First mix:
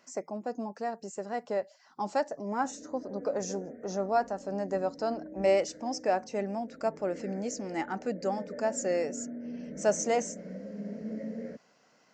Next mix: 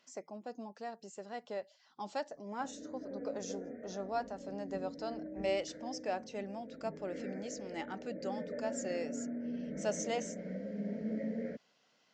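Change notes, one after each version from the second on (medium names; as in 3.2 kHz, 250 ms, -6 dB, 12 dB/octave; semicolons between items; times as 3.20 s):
speech -9.5 dB; master: add peaking EQ 3.4 kHz +13 dB 0.75 oct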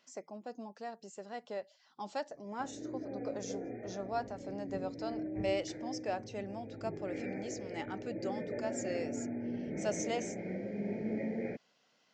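background: remove static phaser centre 540 Hz, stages 8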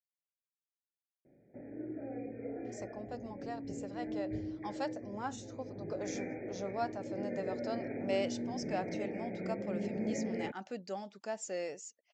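speech: entry +2.65 s; background: entry -1.05 s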